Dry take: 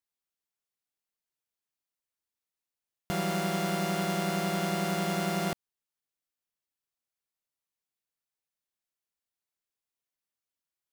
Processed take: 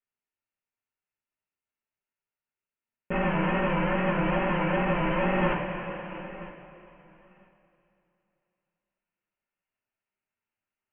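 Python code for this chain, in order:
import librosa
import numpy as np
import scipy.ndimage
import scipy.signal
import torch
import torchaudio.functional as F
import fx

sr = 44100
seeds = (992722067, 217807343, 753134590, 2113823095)

p1 = fx.diode_clip(x, sr, knee_db=-30.5)
p2 = p1 + fx.echo_feedback(p1, sr, ms=969, feedback_pct=15, wet_db=-15.5, dry=0)
p3 = p2 * np.sin(2.0 * np.pi * 360.0 * np.arange(len(p2)) / sr)
p4 = fx.wow_flutter(p3, sr, seeds[0], rate_hz=2.1, depth_cents=110.0)
p5 = fx.notch(p4, sr, hz=1100.0, q=14.0)
p6 = fx.quant_companded(p5, sr, bits=2)
p7 = p5 + (p6 * librosa.db_to_amplitude(-7.5))
p8 = scipy.signal.sosfilt(scipy.signal.butter(16, 2900.0, 'lowpass', fs=sr, output='sos'), p7)
p9 = fx.rev_double_slope(p8, sr, seeds[1], early_s=0.25, late_s=3.0, knee_db=-17, drr_db=-7.0)
p10 = fx.rider(p9, sr, range_db=4, speed_s=0.5)
y = p10 * librosa.db_to_amplitude(-2.5)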